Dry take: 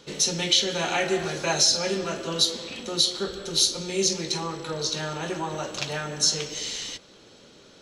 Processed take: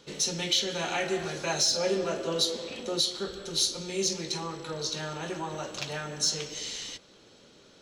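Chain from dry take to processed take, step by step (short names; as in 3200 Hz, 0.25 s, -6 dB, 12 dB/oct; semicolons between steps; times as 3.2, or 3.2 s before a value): 1.76–3 bell 510 Hz +7 dB 1.3 oct; in parallel at -6 dB: soft clip -16.5 dBFS, distortion -15 dB; on the sum: gain -8 dB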